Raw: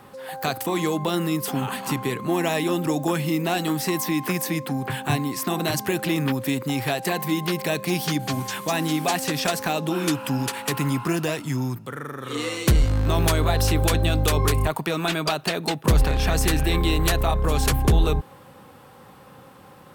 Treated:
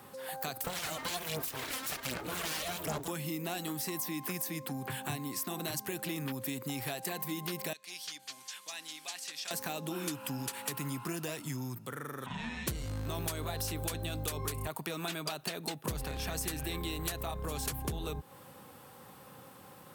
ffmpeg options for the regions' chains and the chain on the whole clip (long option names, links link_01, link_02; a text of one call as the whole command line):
ffmpeg -i in.wav -filter_complex "[0:a]asettb=1/sr,asplit=3[link_01][link_02][link_03];[link_01]atrim=end=0.644[link_04];[link_02]atrim=start=0.64:end=3.08,asetpts=PTS-STARTPTS,afade=type=in:duration=0.004:curve=qsin,afade=type=out:start_time=2.436:duration=0.004:curve=qsin,equalizer=frequency=2700:width_type=o:width=1.8:gain=5.5,aphaser=in_gain=1:out_gain=1:delay=3.9:decay=0.69:speed=1.3:type=sinusoidal,aeval=exprs='abs(val(0))':channel_layout=same[link_05];[link_03]atrim=start=3.076[link_06];[link_04][link_05]acrossfade=duration=0.004:curve1=hsin:curve2=qsin[link_07];[link_07][link_06]acrossfade=duration=0.004:curve1=qsin:curve2=hsin,asettb=1/sr,asplit=3[link_08][link_09][link_10];[link_08]atrim=end=7.734[link_11];[link_09]atrim=start=7.73:end=9.51,asetpts=PTS-STARTPTS,afade=type=in:duration=0.004:curve=qsin,afade=type=out:start_time=1.776:duration=0.004:curve=qsin,highpass=110,lowpass=4300,aderivative[link_12];[link_10]atrim=start=9.506[link_13];[link_11][link_12]acrossfade=duration=0.004:curve1=hsin:curve2=qsin[link_14];[link_14][link_13]acrossfade=duration=0.004:curve1=qsin:curve2=hsin,asettb=1/sr,asplit=3[link_15][link_16][link_17];[link_15]atrim=end=12.264[link_18];[link_16]atrim=start=12.26:end=12.67,asetpts=PTS-STARTPTS,afade=type=in:duration=0.004:curve=qsin,afade=type=out:start_time=0.406:duration=0.004:curve=qsin,lowpass=2900,afreqshift=-270[link_19];[link_17]atrim=start=12.666[link_20];[link_18][link_19]acrossfade=duration=0.004:curve1=hsin:curve2=qsin[link_21];[link_21][link_20]acrossfade=duration=0.004:curve1=qsin:curve2=hsin,highpass=68,highshelf=frequency=5700:gain=10.5,acompressor=threshold=-30dB:ratio=3,volume=-6.5dB" out.wav